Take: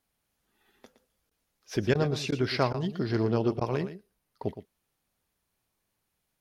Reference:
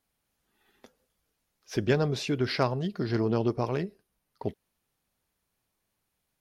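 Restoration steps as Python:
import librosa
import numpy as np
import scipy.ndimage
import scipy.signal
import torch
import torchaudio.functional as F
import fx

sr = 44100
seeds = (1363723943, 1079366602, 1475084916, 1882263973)

y = fx.fix_interpolate(x, sr, at_s=(1.3, 1.94, 2.31, 2.73, 3.6), length_ms=10.0)
y = fx.fix_echo_inverse(y, sr, delay_ms=116, level_db=-12.0)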